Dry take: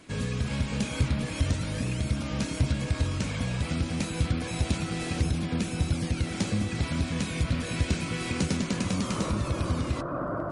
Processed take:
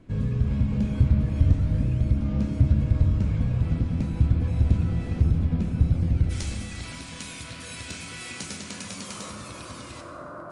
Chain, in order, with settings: tilt -4 dB/oct, from 6.29 s +2.5 dB/oct; plate-style reverb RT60 2.1 s, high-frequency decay 0.55×, DRR 4 dB; gain -7.5 dB

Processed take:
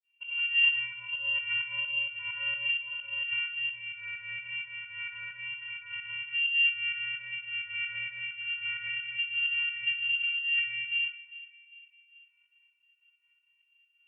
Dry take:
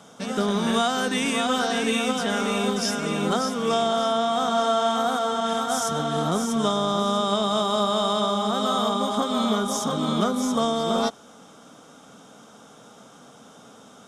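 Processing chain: low-pass opened by the level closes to 1900 Hz, open at -21.5 dBFS; spectral noise reduction 9 dB; expander -49 dBFS; compressor 4:1, threshold -28 dBFS, peak gain reduction 9 dB; vocoder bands 16, square 222 Hz; rotary speaker horn 1.1 Hz; pump 130 bpm, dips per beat 2, -23 dB, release 0.145 s; narrowing echo 0.4 s, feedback 57%, band-pass 410 Hz, level -14 dB; on a send at -4 dB: reverb RT60 0.45 s, pre-delay 3 ms; on the sum: inverted band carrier 3000 Hz; Opus 48 kbps 48000 Hz

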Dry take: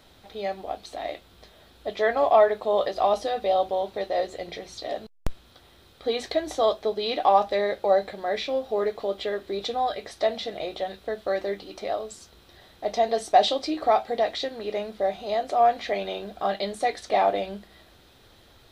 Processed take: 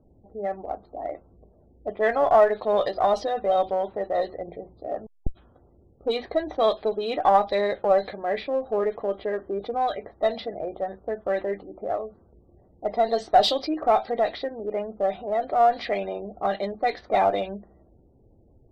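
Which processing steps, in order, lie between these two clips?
low-pass opened by the level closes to 380 Hz, open at -17.5 dBFS; spectral gate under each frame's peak -30 dB strong; bell 4800 Hz +7 dB 0.3 oct; in parallel at -7.5 dB: one-sided clip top -28 dBFS; on the sum: gain -1.5 dB

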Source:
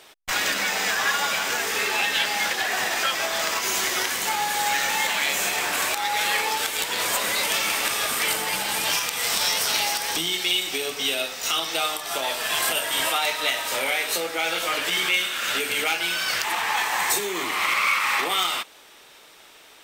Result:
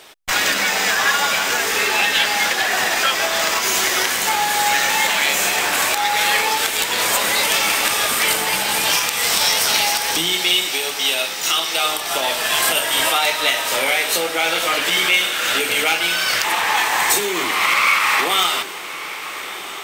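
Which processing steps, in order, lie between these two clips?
10.68–11.85 low shelf 370 Hz -11.5 dB; on a send: diffused feedback echo 1.308 s, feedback 69%, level -14.5 dB; on the sum: gain +6 dB

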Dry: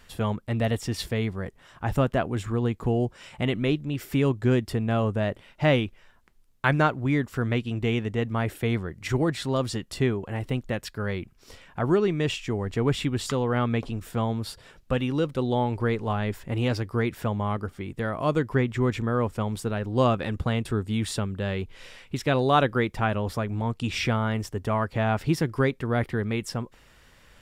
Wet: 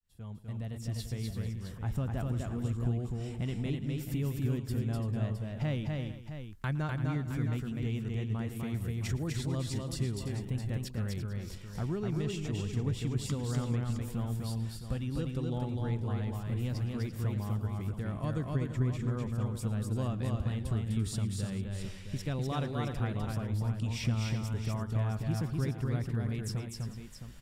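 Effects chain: opening faded in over 1.95 s; tone controls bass +13 dB, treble +9 dB; compressor 2:1, threshold -31 dBFS, peak gain reduction 12.5 dB; tapped delay 0.113/0.251/0.34/0.447/0.665 s -19.5/-3/-12/-17/-10 dB; gain -8 dB

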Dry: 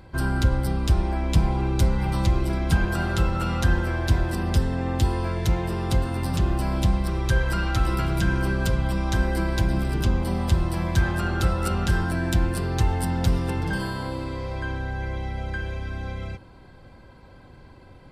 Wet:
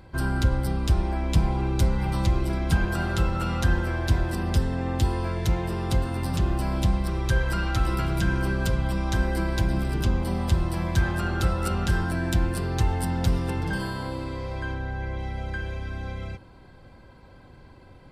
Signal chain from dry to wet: 14.74–15.19 high shelf 4700 Hz -6.5 dB; gain -1.5 dB

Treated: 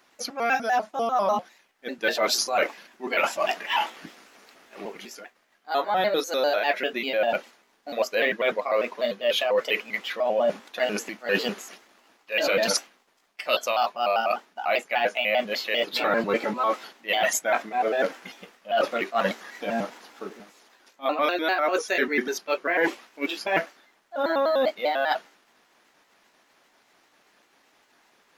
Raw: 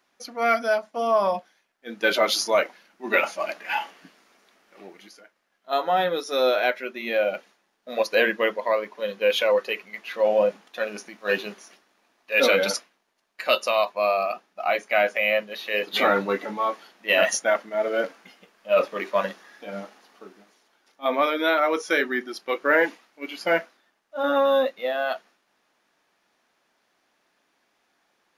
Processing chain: trilling pitch shifter +2.5 st, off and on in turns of 99 ms; reverse; compressor 6:1, threshold -29 dBFS, peak gain reduction 13.5 dB; reverse; gain +8 dB

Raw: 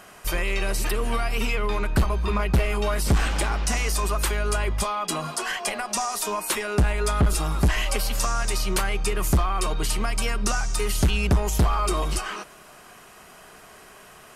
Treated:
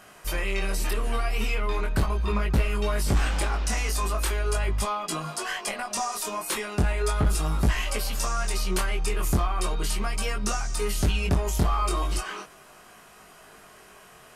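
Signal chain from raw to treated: chorus 0.38 Hz, delay 18.5 ms, depth 4.7 ms

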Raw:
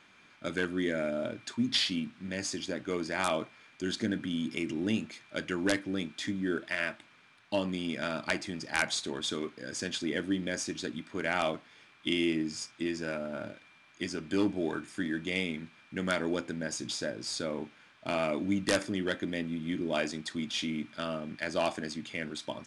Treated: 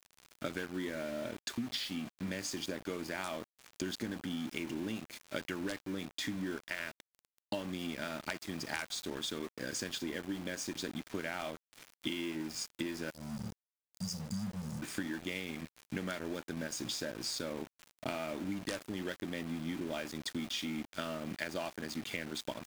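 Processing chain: spectral delete 13.1–14.82, 220–4600 Hz; compressor 16:1, threshold -42 dBFS, peak gain reduction 20.5 dB; sample gate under -51 dBFS; gain +7.5 dB

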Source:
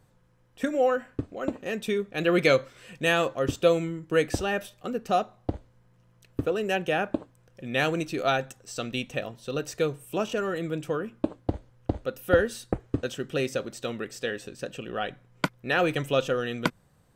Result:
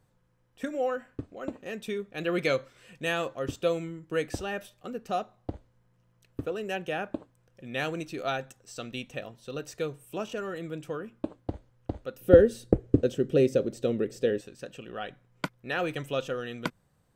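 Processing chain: 12.21–14.41 resonant low shelf 670 Hz +10.5 dB, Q 1.5; gain -6 dB

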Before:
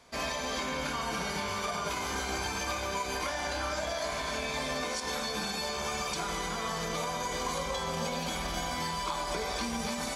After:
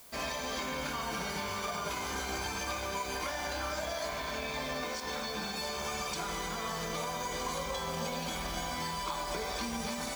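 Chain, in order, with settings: 4.09–5.56 Bessel low-pass 6000 Hz; added noise blue -52 dBFS; gain -2.5 dB

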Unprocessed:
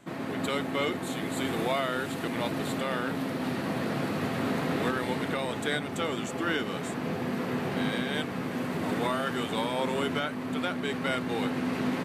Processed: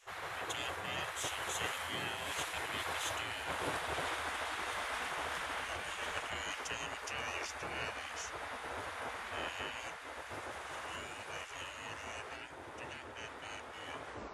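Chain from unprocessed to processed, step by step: tape stop at the end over 0.48 s; Doppler pass-by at 3.04, 17 m/s, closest 8.1 m; reverse; compressor 12:1, threshold -43 dBFS, peak gain reduction 16.5 dB; reverse; spectral gate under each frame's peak -15 dB weak; varispeed -16%; gain +17 dB

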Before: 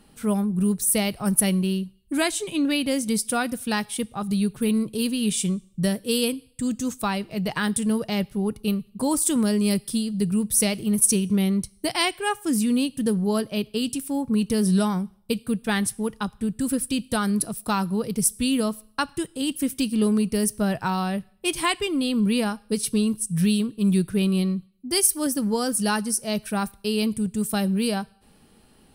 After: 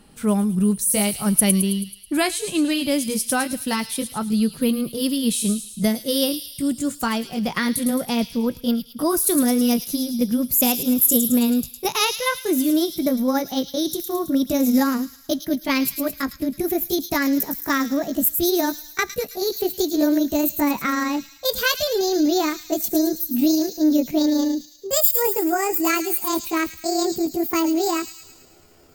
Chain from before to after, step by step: gliding pitch shift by +9 st starting unshifted; thin delay 0.108 s, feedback 58%, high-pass 4000 Hz, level -5 dB; gain +3.5 dB

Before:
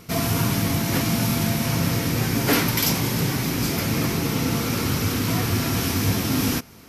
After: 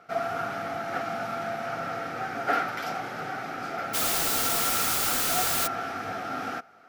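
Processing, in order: double band-pass 1000 Hz, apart 0.82 oct; 3.93–5.66 added noise white -33 dBFS; gain +6 dB

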